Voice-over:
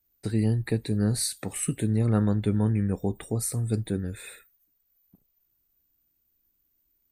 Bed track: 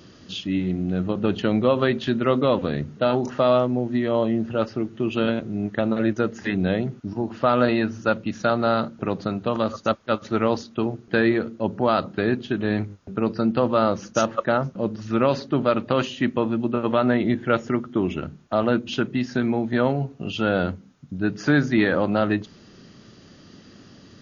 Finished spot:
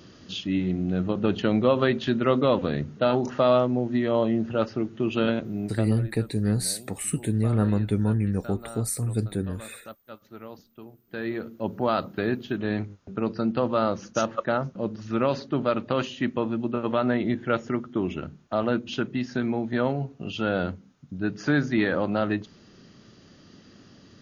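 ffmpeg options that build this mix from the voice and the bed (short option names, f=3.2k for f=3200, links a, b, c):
-filter_complex "[0:a]adelay=5450,volume=0.5dB[a];[1:a]volume=15dB,afade=t=out:st=5.43:d=0.65:silence=0.112202,afade=t=in:st=11.04:d=0.68:silence=0.149624[b];[a][b]amix=inputs=2:normalize=0"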